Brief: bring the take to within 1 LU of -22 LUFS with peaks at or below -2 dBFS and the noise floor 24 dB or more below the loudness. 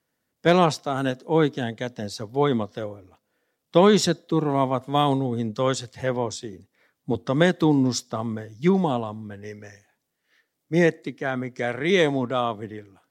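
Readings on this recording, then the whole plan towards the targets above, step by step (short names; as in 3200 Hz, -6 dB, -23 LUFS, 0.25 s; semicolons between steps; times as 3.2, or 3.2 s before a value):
loudness -23.5 LUFS; peak -5.0 dBFS; loudness target -22.0 LUFS
-> gain +1.5 dB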